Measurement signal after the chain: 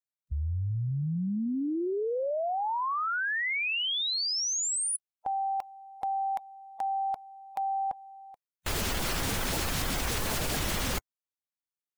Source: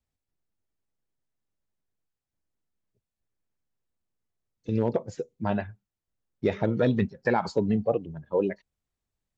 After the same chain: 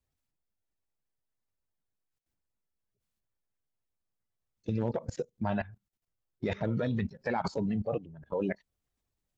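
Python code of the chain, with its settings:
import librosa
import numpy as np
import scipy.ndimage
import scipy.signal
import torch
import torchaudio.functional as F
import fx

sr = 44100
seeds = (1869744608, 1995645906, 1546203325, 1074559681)

y = fx.spec_quant(x, sr, step_db=15)
y = fx.dynamic_eq(y, sr, hz=380.0, q=1.4, threshold_db=-39.0, ratio=4.0, max_db=-5)
y = fx.level_steps(y, sr, step_db=18)
y = F.gain(torch.from_numpy(y), 6.0).numpy()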